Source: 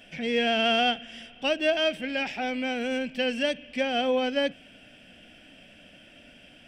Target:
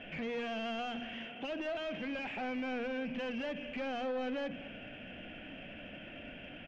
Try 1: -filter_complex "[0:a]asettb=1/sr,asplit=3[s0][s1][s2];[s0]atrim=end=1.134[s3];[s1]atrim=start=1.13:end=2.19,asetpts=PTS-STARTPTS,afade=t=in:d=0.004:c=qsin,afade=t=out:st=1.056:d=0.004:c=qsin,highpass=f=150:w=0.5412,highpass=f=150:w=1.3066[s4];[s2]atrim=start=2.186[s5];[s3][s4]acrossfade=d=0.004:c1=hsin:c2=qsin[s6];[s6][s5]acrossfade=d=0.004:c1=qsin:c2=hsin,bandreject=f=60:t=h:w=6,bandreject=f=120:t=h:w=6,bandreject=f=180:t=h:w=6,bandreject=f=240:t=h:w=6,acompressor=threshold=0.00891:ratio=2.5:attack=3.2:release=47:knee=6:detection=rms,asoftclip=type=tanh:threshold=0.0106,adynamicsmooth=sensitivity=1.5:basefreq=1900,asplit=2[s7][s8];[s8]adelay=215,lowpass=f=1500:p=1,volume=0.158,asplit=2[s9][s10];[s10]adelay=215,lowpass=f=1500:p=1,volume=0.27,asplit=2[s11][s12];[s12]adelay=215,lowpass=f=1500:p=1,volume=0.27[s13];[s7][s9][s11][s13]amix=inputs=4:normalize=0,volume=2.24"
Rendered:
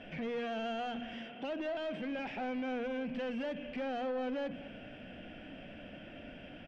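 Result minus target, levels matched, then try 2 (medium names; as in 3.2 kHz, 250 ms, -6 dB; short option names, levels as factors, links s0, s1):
2 kHz band -3.0 dB
-filter_complex "[0:a]asettb=1/sr,asplit=3[s0][s1][s2];[s0]atrim=end=1.134[s3];[s1]atrim=start=1.13:end=2.19,asetpts=PTS-STARTPTS,afade=t=in:d=0.004:c=qsin,afade=t=out:st=1.056:d=0.004:c=qsin,highpass=f=150:w=0.5412,highpass=f=150:w=1.3066[s4];[s2]atrim=start=2.186[s5];[s3][s4]acrossfade=d=0.004:c1=hsin:c2=qsin[s6];[s6][s5]acrossfade=d=0.004:c1=qsin:c2=hsin,bandreject=f=60:t=h:w=6,bandreject=f=120:t=h:w=6,bandreject=f=180:t=h:w=6,bandreject=f=240:t=h:w=6,acompressor=threshold=0.00891:ratio=2.5:attack=3.2:release=47:knee=6:detection=rms,lowpass=f=2800:t=q:w=1.9,asoftclip=type=tanh:threshold=0.0106,adynamicsmooth=sensitivity=1.5:basefreq=1900,asplit=2[s7][s8];[s8]adelay=215,lowpass=f=1500:p=1,volume=0.158,asplit=2[s9][s10];[s10]adelay=215,lowpass=f=1500:p=1,volume=0.27,asplit=2[s11][s12];[s12]adelay=215,lowpass=f=1500:p=1,volume=0.27[s13];[s7][s9][s11][s13]amix=inputs=4:normalize=0,volume=2.24"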